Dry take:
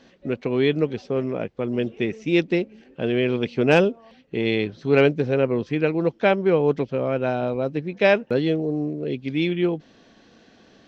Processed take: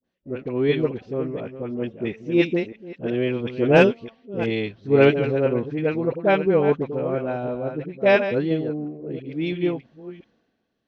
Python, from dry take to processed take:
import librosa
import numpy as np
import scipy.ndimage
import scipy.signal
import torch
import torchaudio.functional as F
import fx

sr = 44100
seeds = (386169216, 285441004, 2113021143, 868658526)

y = fx.reverse_delay(x, sr, ms=340, wet_db=-8.0)
y = fx.high_shelf(y, sr, hz=3800.0, db=-11.0)
y = fx.dispersion(y, sr, late='highs', ms=46.0, hz=780.0)
y = fx.band_widen(y, sr, depth_pct=70)
y = F.gain(torch.from_numpy(y), -1.0).numpy()